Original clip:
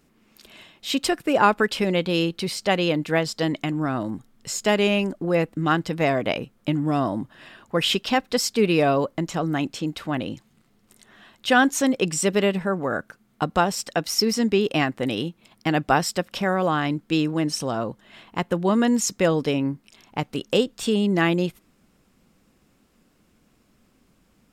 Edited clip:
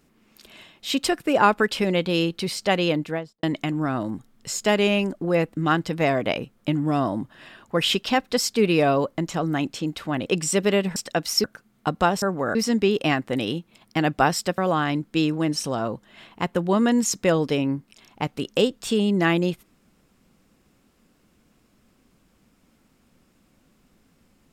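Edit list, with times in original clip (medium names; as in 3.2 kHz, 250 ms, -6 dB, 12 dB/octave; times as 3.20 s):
2.90–3.43 s: studio fade out
10.26–11.96 s: delete
12.66–12.99 s: swap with 13.77–14.25 s
16.28–16.54 s: delete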